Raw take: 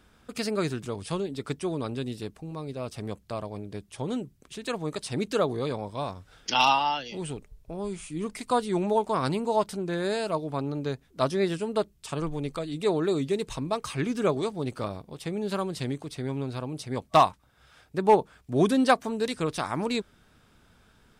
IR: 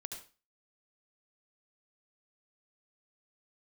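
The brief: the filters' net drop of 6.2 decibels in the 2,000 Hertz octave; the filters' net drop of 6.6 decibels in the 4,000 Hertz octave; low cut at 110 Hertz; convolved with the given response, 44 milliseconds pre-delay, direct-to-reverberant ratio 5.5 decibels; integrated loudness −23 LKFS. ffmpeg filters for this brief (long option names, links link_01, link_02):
-filter_complex "[0:a]highpass=110,equalizer=frequency=2000:width_type=o:gain=-7,equalizer=frequency=4000:width_type=o:gain=-6,asplit=2[link_01][link_02];[1:a]atrim=start_sample=2205,adelay=44[link_03];[link_02][link_03]afir=irnorm=-1:irlink=0,volume=-3dB[link_04];[link_01][link_04]amix=inputs=2:normalize=0,volume=6dB"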